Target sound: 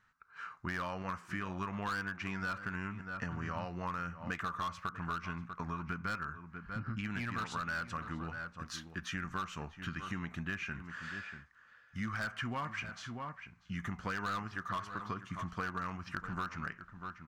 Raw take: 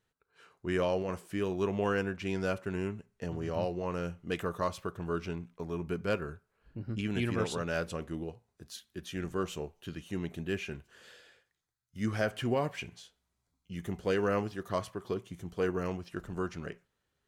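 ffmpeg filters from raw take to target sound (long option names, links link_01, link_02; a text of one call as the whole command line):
ffmpeg -i in.wav -filter_complex "[0:a]firequalizer=gain_entry='entry(240,0);entry(390,-13);entry(1200,14);entry(3300,-3);entry(5800,0);entry(10000,-13)':delay=0.05:min_phase=1,volume=24dB,asoftclip=hard,volume=-24dB,asplit=2[link_01][link_02];[link_02]adelay=641.4,volume=-15dB,highshelf=frequency=4000:gain=-14.4[link_03];[link_01][link_03]amix=inputs=2:normalize=0,acompressor=threshold=-40dB:ratio=6,volume=4dB" out.wav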